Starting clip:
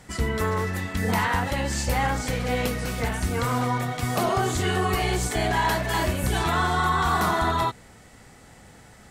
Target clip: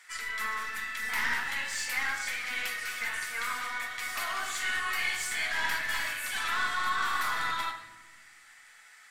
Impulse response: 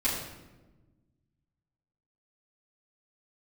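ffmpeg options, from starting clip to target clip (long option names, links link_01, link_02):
-filter_complex "[0:a]highpass=frequency=1700:width_type=q:width=2.1,aeval=exprs='(tanh(11.2*val(0)+0.25)-tanh(0.25))/11.2':channel_layout=same,asplit=2[link_01][link_02];[1:a]atrim=start_sample=2205[link_03];[link_02][link_03]afir=irnorm=-1:irlink=0,volume=-9.5dB[link_04];[link_01][link_04]amix=inputs=2:normalize=0,volume=-6.5dB"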